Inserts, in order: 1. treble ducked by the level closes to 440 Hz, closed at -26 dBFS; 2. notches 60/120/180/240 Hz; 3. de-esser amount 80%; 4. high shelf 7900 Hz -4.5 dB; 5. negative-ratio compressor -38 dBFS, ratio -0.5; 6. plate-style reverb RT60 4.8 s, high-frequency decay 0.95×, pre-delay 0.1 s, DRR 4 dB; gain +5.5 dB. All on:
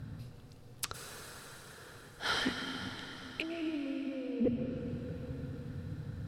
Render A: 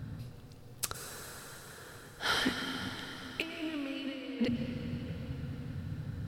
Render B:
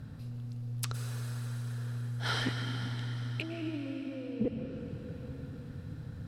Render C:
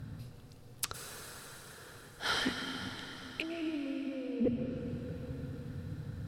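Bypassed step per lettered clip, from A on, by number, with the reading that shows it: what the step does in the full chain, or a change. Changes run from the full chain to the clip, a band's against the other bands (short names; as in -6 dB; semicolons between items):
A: 1, 500 Hz band -4.5 dB; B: 2, 125 Hz band +10.0 dB; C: 4, 8 kHz band +2.0 dB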